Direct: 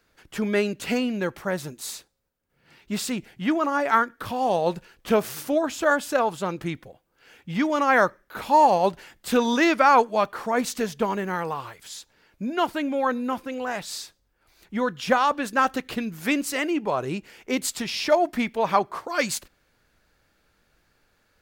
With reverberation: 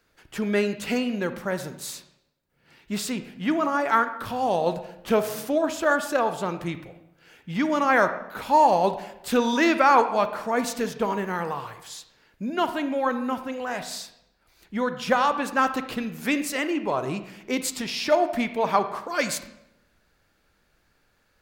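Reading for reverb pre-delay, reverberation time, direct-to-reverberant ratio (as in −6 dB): 31 ms, 0.85 s, 9.5 dB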